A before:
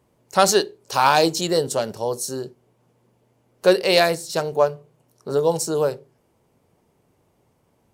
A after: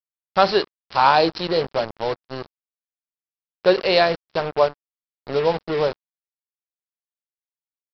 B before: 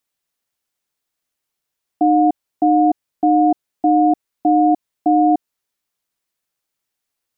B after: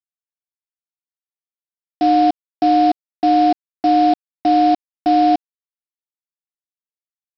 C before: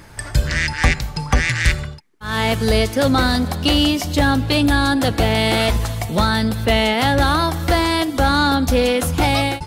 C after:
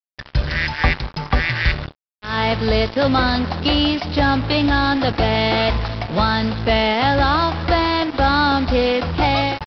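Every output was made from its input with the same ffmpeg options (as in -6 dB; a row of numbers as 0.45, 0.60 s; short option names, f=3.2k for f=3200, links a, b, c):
-af "adynamicequalizer=threshold=0.0398:dfrequency=900:dqfactor=0.99:tfrequency=900:tqfactor=0.99:attack=5:release=100:ratio=0.375:range=2:mode=boostabove:tftype=bell,aresample=11025,acrusher=bits=3:mix=0:aa=0.5,aresample=44100,volume=-2dB"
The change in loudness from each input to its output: 0.0, 0.0, -0.5 LU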